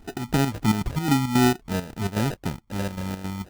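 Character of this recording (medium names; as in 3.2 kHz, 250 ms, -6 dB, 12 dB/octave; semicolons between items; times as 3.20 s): phasing stages 8, 2.9 Hz, lowest notch 420–1000 Hz; chopped level 3.7 Hz, depth 65%, duty 65%; aliases and images of a low sample rate 1.1 kHz, jitter 0%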